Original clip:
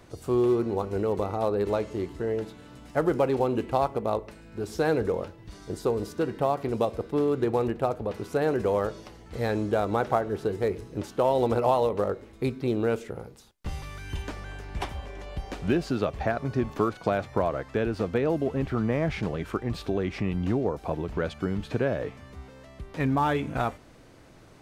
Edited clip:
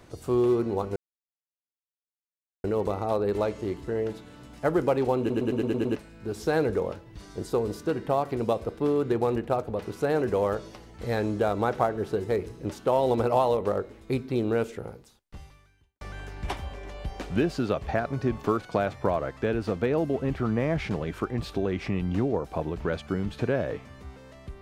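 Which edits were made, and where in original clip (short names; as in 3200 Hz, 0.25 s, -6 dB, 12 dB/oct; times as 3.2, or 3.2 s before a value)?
0.96 insert silence 1.68 s
3.51 stutter in place 0.11 s, 7 plays
13.19–14.33 fade out quadratic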